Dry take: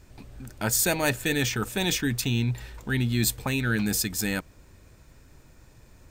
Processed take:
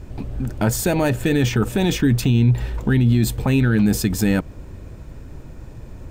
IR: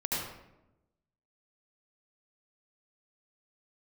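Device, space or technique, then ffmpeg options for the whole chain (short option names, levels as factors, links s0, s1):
mastering chain: -af "equalizer=f=3000:t=o:w=0.47:g=3.5,acompressor=threshold=0.0447:ratio=2,asoftclip=type=tanh:threshold=0.141,tiltshelf=f=1200:g=7.5,alimiter=level_in=7.5:limit=0.891:release=50:level=0:latency=1,volume=0.398"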